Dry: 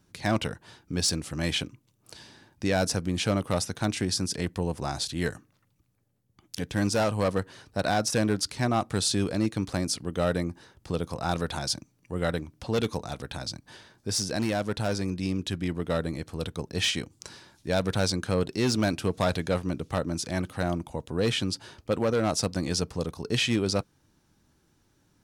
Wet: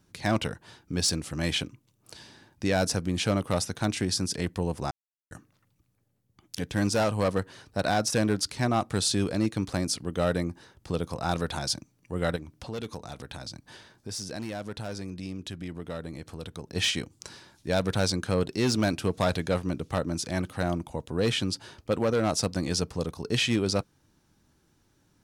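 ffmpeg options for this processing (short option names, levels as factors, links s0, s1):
-filter_complex "[0:a]asettb=1/sr,asplit=3[s0][s1][s2];[s0]atrim=end=12.364[s3];[s1]atrim=start=12.36:end=16.76,asetpts=PTS-STARTPTS,afade=t=in:d=0.004:c=qsin,afade=t=out:st=4.396:d=0.004:c=qsin,acompressor=threshold=0.0126:ratio=2:attack=3.2:release=140:knee=1:detection=peak[s4];[s2]atrim=start=16.756[s5];[s3][s4]acrossfade=d=0.004:c1=hsin:c2=qsin[s6];[s6][s5]acrossfade=d=0.004:c1=qsin:c2=hsin,asplit=3[s7][s8][s9];[s7]atrim=end=4.91,asetpts=PTS-STARTPTS,afade=t=out:st=4.906:d=0.004:c=hsin[s10];[s8]atrim=start=4.91:end=5.31,asetpts=PTS-STARTPTS,volume=0[s11];[s9]atrim=start=5.31,asetpts=PTS-STARTPTS,afade=t=in:d=0.004:c=hsin[s12];[s10][s11][s12]concat=n=3:v=0:a=1"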